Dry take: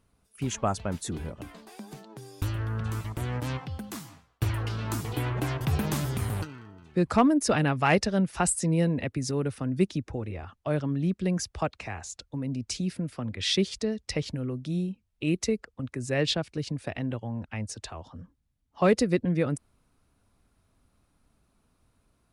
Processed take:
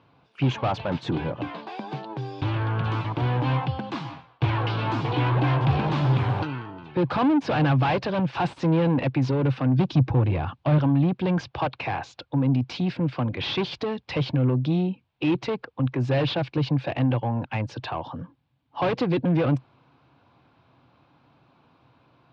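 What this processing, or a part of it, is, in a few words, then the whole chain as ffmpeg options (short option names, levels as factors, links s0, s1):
overdrive pedal into a guitar cabinet: -filter_complex "[0:a]asettb=1/sr,asplit=3[s0][s1][s2];[s0]atrim=end=9.794[s3];[s1]atrim=start=9.79:end=10.78,asetpts=PTS-STARTPTS,afade=t=in:d=0.004:c=qsin,afade=t=out:st=0.986:d=0.004:c=qsin,bass=f=250:g=11,treble=f=4000:g=5[s4];[s2]atrim=start=10.776[s5];[s3][s4]acrossfade=d=0.004:c1=hsin:c2=qsin[s6];[s6][s5]acrossfade=d=0.004:c1=qsin:c2=hsin,asplit=2[s7][s8];[s8]highpass=f=720:p=1,volume=44.7,asoftclip=type=tanh:threshold=0.501[s9];[s7][s9]amix=inputs=2:normalize=0,lowpass=f=1000:p=1,volume=0.501,highpass=97,equalizer=f=130:t=q:w=4:g=9,equalizer=f=210:t=q:w=4:g=-9,equalizer=f=420:t=q:w=4:g=-8,equalizer=f=630:t=q:w=4:g=-6,equalizer=f=1300:t=q:w=4:g=-7,equalizer=f=1900:t=q:w=4:g=-8,lowpass=f=4100:w=0.5412,lowpass=f=4100:w=1.3066,volume=0.668"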